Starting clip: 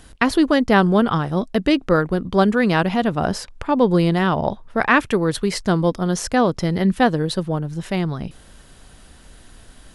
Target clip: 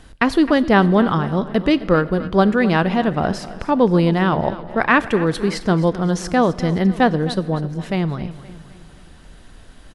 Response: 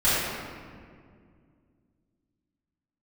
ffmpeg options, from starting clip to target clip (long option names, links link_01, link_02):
-filter_complex "[0:a]highshelf=frequency=6900:gain=-11.5,aecho=1:1:261|522|783|1044:0.158|0.0729|0.0335|0.0154,asplit=2[link_01][link_02];[1:a]atrim=start_sample=2205,highshelf=frequency=4700:gain=11[link_03];[link_02][link_03]afir=irnorm=-1:irlink=0,volume=-36dB[link_04];[link_01][link_04]amix=inputs=2:normalize=0,volume=1dB"